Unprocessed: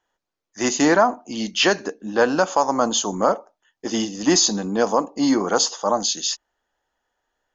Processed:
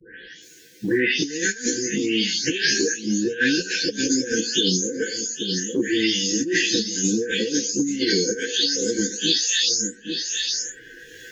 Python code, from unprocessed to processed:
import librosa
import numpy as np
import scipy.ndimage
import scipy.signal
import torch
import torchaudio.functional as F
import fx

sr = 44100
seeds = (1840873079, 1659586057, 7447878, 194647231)

y = fx.spec_delay(x, sr, highs='late', ms=289)
y = fx.highpass(y, sr, hz=130.0, slope=6)
y = fx.high_shelf(y, sr, hz=2300.0, db=2.5)
y = fx.over_compress(y, sr, threshold_db=-23.0, ratio=-0.5)
y = fx.peak_eq(y, sr, hz=1400.0, db=9.5, octaves=0.23)
y = y + 10.0 ** (-20.0 / 20.0) * np.pad(y, (int(550 * sr / 1000.0), 0))[:len(y)]
y = fx.stretch_vocoder_free(y, sr, factor=1.5)
y = fx.brickwall_bandstop(y, sr, low_hz=520.0, high_hz=1500.0)
y = fx.band_squash(y, sr, depth_pct=100)
y = y * 10.0 ** (6.0 / 20.0)